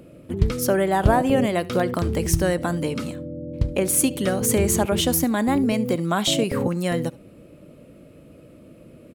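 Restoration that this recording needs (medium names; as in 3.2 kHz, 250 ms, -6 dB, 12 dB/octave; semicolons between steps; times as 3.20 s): inverse comb 72 ms -22 dB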